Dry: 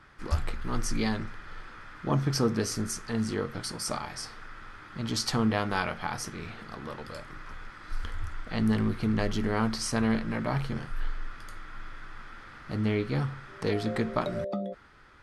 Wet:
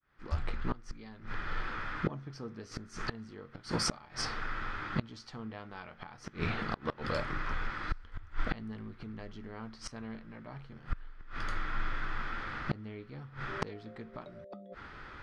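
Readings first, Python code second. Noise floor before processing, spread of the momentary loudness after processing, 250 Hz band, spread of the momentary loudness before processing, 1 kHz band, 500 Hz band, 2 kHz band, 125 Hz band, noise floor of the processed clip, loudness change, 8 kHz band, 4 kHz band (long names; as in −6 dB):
−48 dBFS, 12 LU, −11.5 dB, 19 LU, −4.5 dB, −10.0 dB, −2.5 dB, −9.0 dB, −56 dBFS, −8.5 dB, −9.0 dB, −6.0 dB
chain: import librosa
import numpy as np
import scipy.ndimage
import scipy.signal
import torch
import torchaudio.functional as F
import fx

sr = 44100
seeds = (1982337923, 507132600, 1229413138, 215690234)

y = fx.fade_in_head(x, sr, length_s=1.67)
y = scipy.signal.sosfilt(scipy.signal.butter(2, 4400.0, 'lowpass', fs=sr, output='sos'), y)
y = fx.gate_flip(y, sr, shuts_db=-26.0, range_db=-25)
y = F.gain(torch.from_numpy(y), 8.0).numpy()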